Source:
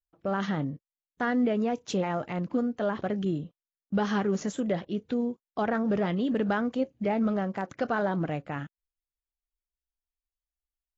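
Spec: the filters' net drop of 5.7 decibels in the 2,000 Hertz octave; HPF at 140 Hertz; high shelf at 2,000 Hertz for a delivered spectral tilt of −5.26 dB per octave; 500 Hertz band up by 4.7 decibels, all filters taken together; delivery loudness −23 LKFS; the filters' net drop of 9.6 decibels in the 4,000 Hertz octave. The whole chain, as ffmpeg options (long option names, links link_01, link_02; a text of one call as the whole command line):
ffmpeg -i in.wav -af "highpass=140,equalizer=frequency=500:width_type=o:gain=6.5,highshelf=frequency=2000:gain=-6.5,equalizer=frequency=2000:width_type=o:gain=-4,equalizer=frequency=4000:width_type=o:gain=-5,volume=4.5dB" out.wav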